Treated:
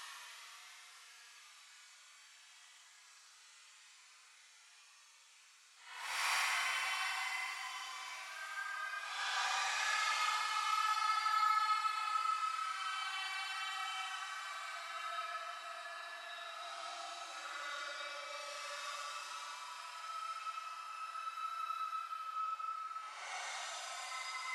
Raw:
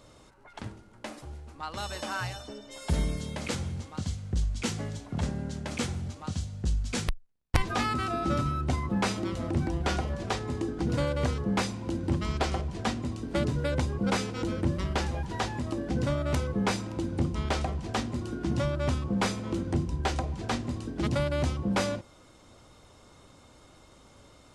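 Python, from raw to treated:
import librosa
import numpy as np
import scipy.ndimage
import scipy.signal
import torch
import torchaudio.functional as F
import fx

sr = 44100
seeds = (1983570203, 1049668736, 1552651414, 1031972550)

y = scipy.signal.sosfilt(scipy.signal.butter(4, 1000.0, 'highpass', fs=sr, output='sos'), x)
y = fx.rev_double_slope(y, sr, seeds[0], early_s=0.37, late_s=5.0, knee_db=-22, drr_db=-1.0)
y = fx.paulstretch(y, sr, seeds[1], factor=15.0, window_s=0.05, from_s=7.14)
y = y * 10.0 ** (-7.5 / 20.0)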